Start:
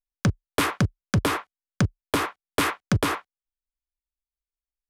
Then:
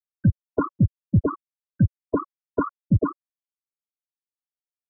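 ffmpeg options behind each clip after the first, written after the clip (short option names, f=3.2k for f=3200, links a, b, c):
-af "afftfilt=real='re*gte(hypot(re,im),0.251)':imag='im*gte(hypot(re,im),0.251)':win_size=1024:overlap=0.75,bandreject=f=570:w=12,volume=4dB"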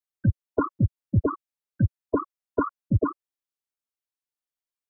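-af "equalizer=f=170:w=2.1:g=-8"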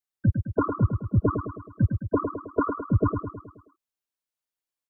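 -af "aecho=1:1:106|212|318|424|530|636:0.473|0.246|0.128|0.0665|0.0346|0.018"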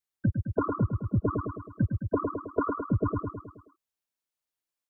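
-af "acompressor=threshold=-22dB:ratio=6"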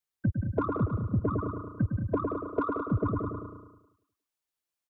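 -filter_complex "[0:a]asplit=2[a][b];[b]asoftclip=type=tanh:threshold=-25.5dB,volume=-9dB[c];[a][c]amix=inputs=2:normalize=0,aecho=1:1:178|356|534:0.398|0.0876|0.0193,volume=-3dB"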